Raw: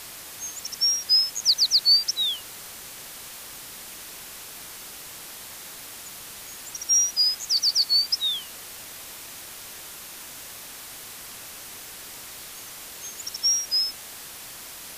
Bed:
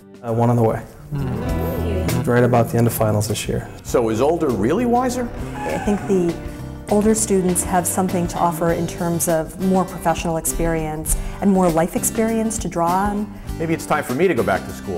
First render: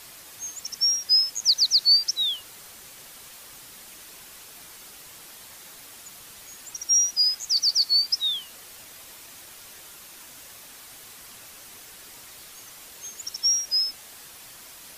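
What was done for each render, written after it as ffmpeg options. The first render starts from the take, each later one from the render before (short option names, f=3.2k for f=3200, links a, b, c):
-af "afftdn=nr=6:nf=-41"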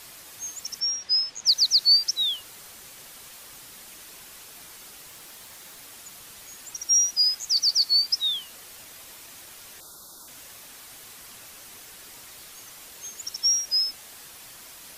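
-filter_complex "[0:a]asettb=1/sr,asplit=3[a][b][c];[a]atrim=end=0.804[d];[b]atrim=start=0.8:end=1.47,asetpts=PTS-STARTPTS,afade=t=in:d=0.004:c=qsin,afade=t=out:st=0.666:d=0.004:c=qsin,lowpass=4.8k[e];[c]atrim=start=1.466[f];[d][e]acrossfade=d=0.004:c1=hsin:c2=qsin[g];[g][f]acrossfade=d=0.004:c1=qsin:c2=hsin,asettb=1/sr,asplit=3[h][i][j];[h]atrim=end=5.074[k];[i]atrim=start=5.07:end=5.8,asetpts=PTS-STARTPTS,afade=t=in:d=0.004:c=qsin,afade=t=out:st=0.726:d=0.004:c=qsin,aeval=exprs='val(0)*gte(abs(val(0)),0.00224)':c=same[l];[j]atrim=start=5.796[m];[k][l]acrossfade=d=0.004:c1=hsin:c2=qsin[n];[n][m]acrossfade=d=0.004:c1=qsin:c2=hsin,asettb=1/sr,asplit=3[o][p][q];[o]atrim=end=9.804[r];[p]atrim=start=9.8:end=10.28,asetpts=PTS-STARTPTS,afade=t=in:d=0.004:c=qsin,afade=t=out:st=0.476:d=0.004:c=qsin,asuperstop=centerf=2300:order=12:qfactor=1.1[s];[q]atrim=start=10.276[t];[r][s]acrossfade=d=0.004:c1=hsin:c2=qsin[u];[u][t]acrossfade=d=0.004:c1=qsin:c2=hsin"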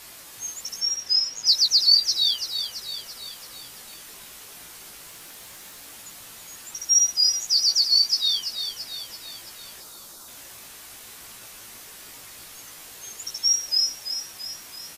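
-filter_complex "[0:a]asplit=2[a][b];[b]adelay=18,volume=-5dB[c];[a][c]amix=inputs=2:normalize=0,aecho=1:1:336|672|1008|1344|1680|2016:0.355|0.192|0.103|0.0559|0.0302|0.0163"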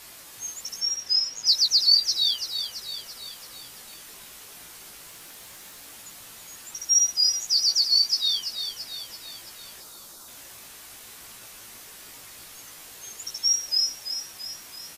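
-af "volume=-1.5dB"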